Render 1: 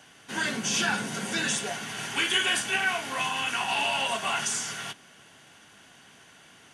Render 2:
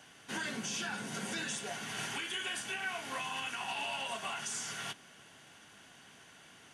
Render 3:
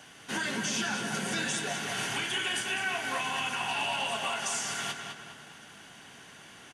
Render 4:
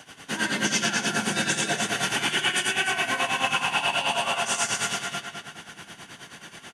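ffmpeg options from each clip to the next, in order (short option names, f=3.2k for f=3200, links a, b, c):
-af "alimiter=level_in=0.5dB:limit=-24dB:level=0:latency=1:release=451,volume=-0.5dB,volume=-3.5dB"
-filter_complex "[0:a]asplit=2[a][b];[b]adelay=204,lowpass=f=4.9k:p=1,volume=-5dB,asplit=2[c][d];[d]adelay=204,lowpass=f=4.9k:p=1,volume=0.46,asplit=2[e][f];[f]adelay=204,lowpass=f=4.9k:p=1,volume=0.46,asplit=2[g][h];[h]adelay=204,lowpass=f=4.9k:p=1,volume=0.46,asplit=2[i][j];[j]adelay=204,lowpass=f=4.9k:p=1,volume=0.46,asplit=2[k][l];[l]adelay=204,lowpass=f=4.9k:p=1,volume=0.46[m];[a][c][e][g][i][k][m]amix=inputs=7:normalize=0,volume=5.5dB"
-af "aecho=1:1:87.46|285.7:0.891|0.631,tremolo=f=9.3:d=0.74,volume=6.5dB"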